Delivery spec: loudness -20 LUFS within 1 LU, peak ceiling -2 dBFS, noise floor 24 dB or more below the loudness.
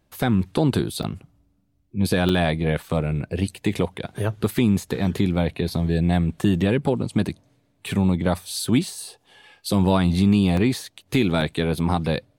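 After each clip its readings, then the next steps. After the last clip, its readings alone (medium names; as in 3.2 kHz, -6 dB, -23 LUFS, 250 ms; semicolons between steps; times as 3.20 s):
dropouts 4; longest dropout 3.4 ms; loudness -22.5 LUFS; peak level -8.0 dBFS; loudness target -20.0 LUFS
-> interpolate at 1.03/2.29/10.57/11.41 s, 3.4 ms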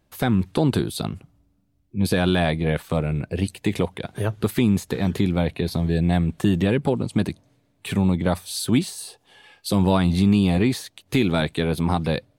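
dropouts 0; loudness -22.5 LUFS; peak level -8.0 dBFS; loudness target -20.0 LUFS
-> trim +2.5 dB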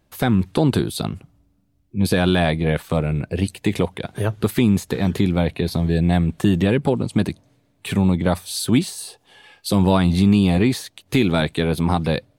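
loudness -20.0 LUFS; peak level -5.5 dBFS; noise floor -64 dBFS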